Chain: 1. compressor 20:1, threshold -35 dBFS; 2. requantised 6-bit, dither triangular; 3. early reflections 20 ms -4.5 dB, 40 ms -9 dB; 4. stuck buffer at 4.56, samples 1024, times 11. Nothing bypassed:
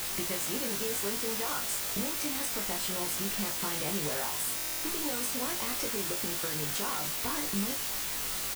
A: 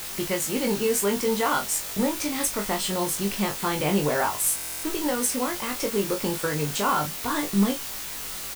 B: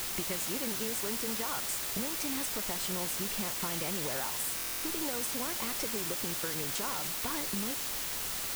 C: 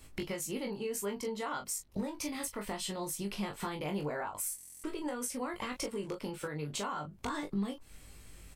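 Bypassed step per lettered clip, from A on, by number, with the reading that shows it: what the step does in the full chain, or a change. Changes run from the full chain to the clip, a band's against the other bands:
1, mean gain reduction 9.5 dB; 3, loudness change -1.5 LU; 2, crest factor change +2.0 dB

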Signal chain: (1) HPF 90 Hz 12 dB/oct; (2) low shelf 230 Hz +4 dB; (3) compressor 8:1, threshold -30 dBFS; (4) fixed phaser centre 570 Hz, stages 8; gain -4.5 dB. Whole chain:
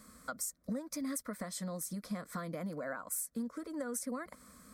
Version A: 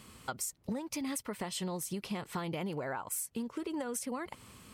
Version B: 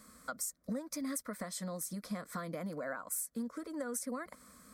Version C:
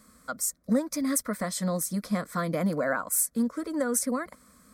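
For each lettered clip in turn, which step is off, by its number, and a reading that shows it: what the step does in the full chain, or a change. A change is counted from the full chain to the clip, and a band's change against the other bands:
4, 4 kHz band +5.0 dB; 2, 125 Hz band -1.5 dB; 3, crest factor change +2.0 dB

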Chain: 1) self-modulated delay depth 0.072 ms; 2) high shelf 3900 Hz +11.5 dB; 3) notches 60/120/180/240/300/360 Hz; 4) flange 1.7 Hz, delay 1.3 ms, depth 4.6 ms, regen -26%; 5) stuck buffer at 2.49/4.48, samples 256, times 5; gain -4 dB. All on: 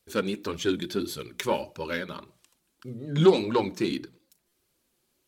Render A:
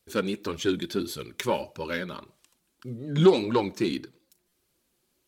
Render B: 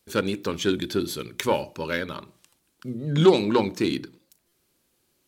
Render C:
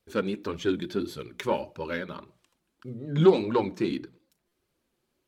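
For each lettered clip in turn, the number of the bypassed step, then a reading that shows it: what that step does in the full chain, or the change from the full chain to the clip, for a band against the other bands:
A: 3, momentary loudness spread change +1 LU; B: 4, loudness change +2.5 LU; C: 2, 4 kHz band -5.0 dB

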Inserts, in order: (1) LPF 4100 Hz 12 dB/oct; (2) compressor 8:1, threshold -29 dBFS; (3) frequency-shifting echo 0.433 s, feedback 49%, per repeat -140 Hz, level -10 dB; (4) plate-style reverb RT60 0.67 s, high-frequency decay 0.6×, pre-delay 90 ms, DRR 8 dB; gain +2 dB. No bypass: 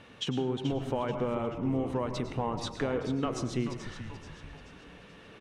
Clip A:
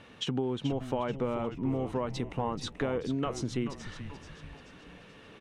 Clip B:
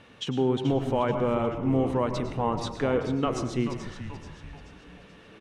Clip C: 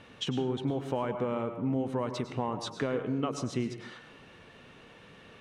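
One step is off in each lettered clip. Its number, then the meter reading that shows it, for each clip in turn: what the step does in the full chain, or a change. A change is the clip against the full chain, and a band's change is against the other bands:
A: 4, echo-to-direct -5.0 dB to -9.0 dB; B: 2, mean gain reduction 2.5 dB; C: 3, echo-to-direct -5.0 dB to -8.0 dB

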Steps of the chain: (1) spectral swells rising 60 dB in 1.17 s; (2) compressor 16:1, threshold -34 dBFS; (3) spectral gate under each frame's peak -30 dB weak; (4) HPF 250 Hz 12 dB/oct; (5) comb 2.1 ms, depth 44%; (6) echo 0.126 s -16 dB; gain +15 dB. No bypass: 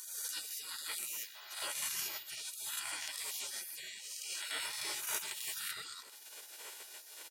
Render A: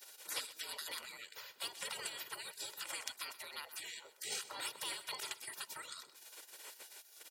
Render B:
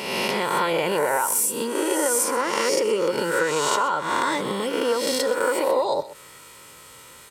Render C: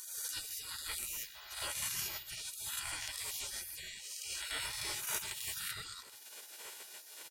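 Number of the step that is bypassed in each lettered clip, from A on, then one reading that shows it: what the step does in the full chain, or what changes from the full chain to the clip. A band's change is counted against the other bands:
1, 8 kHz band -6.5 dB; 3, 250 Hz band +20.0 dB; 4, 250 Hz band +2.5 dB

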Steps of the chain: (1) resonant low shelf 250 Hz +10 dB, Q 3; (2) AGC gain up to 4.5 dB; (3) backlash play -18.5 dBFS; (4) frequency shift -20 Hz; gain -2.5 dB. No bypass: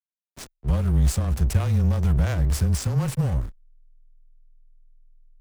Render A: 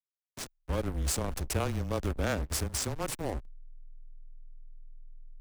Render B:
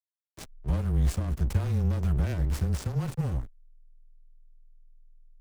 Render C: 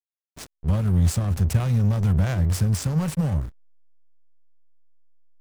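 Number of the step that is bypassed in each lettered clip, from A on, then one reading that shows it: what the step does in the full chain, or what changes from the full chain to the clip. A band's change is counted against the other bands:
1, 125 Hz band -14.0 dB; 2, momentary loudness spread change +6 LU; 4, 250 Hz band +2.0 dB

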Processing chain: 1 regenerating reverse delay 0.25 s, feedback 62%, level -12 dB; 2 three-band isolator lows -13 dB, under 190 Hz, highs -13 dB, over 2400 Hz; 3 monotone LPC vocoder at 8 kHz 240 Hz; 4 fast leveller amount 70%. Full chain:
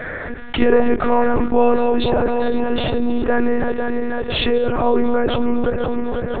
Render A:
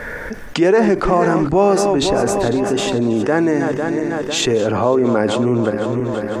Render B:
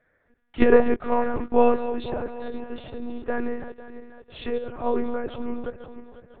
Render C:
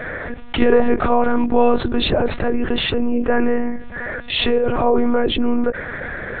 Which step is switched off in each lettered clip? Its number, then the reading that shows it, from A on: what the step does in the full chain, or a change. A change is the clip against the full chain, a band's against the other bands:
3, 125 Hz band +3.5 dB; 4, crest factor change +6.0 dB; 1, 4 kHz band +4.5 dB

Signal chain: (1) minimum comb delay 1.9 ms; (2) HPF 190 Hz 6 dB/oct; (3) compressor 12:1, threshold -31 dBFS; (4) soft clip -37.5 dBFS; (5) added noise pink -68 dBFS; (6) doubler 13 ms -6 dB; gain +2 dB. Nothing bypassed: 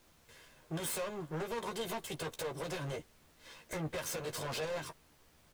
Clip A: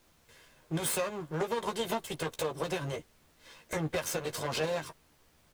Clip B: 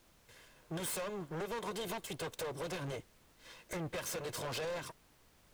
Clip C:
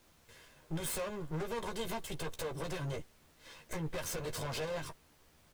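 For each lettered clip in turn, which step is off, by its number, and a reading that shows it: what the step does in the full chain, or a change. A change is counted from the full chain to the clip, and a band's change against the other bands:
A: 4, distortion -8 dB; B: 6, crest factor change -2.0 dB; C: 2, 125 Hz band +3.0 dB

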